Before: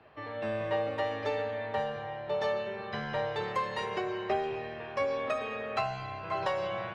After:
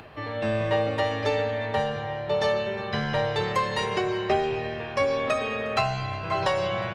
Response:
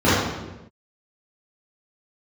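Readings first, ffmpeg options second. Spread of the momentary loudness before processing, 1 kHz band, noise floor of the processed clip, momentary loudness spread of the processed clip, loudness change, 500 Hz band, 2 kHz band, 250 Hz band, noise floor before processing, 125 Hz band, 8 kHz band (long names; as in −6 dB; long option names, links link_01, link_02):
5 LU, +6.0 dB, −34 dBFS, 4 LU, +7.0 dB, +6.5 dB, +7.5 dB, +9.0 dB, −42 dBFS, +11.5 dB, can't be measured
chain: -af "acompressor=mode=upward:threshold=-48dB:ratio=2.5,highshelf=frequency=3400:gain=10.5,aresample=32000,aresample=44100,lowshelf=frequency=250:gain=9,aecho=1:1:358:0.0794,volume=4.5dB"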